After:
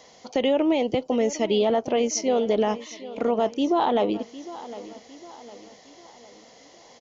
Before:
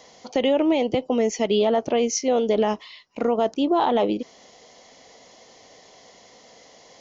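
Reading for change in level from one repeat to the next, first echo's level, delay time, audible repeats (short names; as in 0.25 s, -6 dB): -7.0 dB, -16.0 dB, 0.757 s, 3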